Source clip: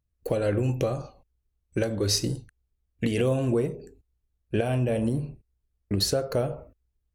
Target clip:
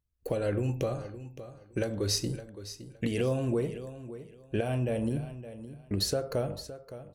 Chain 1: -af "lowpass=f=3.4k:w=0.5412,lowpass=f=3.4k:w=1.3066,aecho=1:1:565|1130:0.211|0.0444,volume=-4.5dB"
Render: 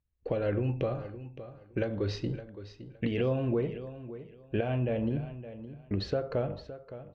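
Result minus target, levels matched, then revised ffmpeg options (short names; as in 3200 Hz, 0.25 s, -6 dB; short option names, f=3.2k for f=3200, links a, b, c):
4000 Hz band -8.5 dB
-af "aecho=1:1:565|1130:0.211|0.0444,volume=-4.5dB"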